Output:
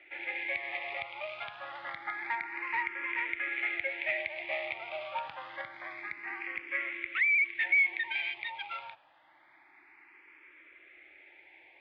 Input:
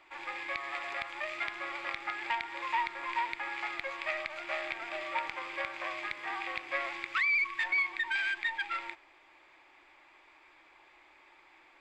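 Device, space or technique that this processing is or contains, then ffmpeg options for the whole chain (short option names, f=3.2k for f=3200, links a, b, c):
barber-pole phaser into a guitar amplifier: -filter_complex "[0:a]asettb=1/sr,asplit=3[a][b][c];[a]atrim=end=5.614[d];[b]atrim=start=5.61:end=7.6,asetpts=PTS-STARTPTS,afade=t=in:d=0.004:c=qsin,afade=t=out:st=1.986:d=0.004:c=qsin,equalizer=f=1.1k:w=0.37:g=-4.5[e];[c]atrim=start=7.596[f];[d][e]acrossfade=d=0.004:c1=hsin:c2=qsin[g];[g][f]acrossfade=d=0.004:c1=qsin:c2=hsin,asplit=2[h][i];[i]afreqshift=0.27[j];[h][j]amix=inputs=2:normalize=1,asoftclip=type=tanh:threshold=-25.5dB,highpass=76,equalizer=f=220:t=q:w=4:g=-4,equalizer=f=1.1k:t=q:w=4:g=-8,equalizer=f=2.1k:t=q:w=4:g=6,lowpass=f=3.4k:w=0.5412,lowpass=f=3.4k:w=1.3066,volume=3dB"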